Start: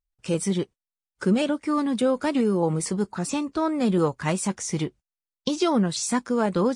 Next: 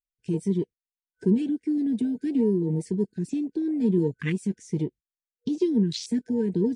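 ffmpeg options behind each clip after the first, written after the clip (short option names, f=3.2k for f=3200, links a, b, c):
-af "afftfilt=real='re*(1-between(b*sr/4096,480,1500))':imag='im*(1-between(b*sr/4096,480,1500))':win_size=4096:overlap=0.75,afwtdn=0.0282"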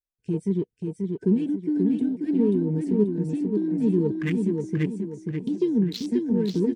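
-filter_complex "[0:a]aecho=1:1:535|1070|1605|2140|2675:0.631|0.259|0.106|0.0435|0.0178,asplit=2[a][b];[b]adynamicsmooth=sensitivity=6.5:basefreq=1.7k,volume=2.5dB[c];[a][c]amix=inputs=2:normalize=0,volume=-7dB"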